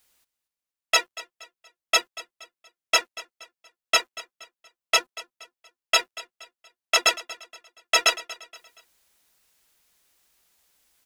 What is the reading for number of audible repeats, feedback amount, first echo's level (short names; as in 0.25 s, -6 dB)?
3, 38%, -18.0 dB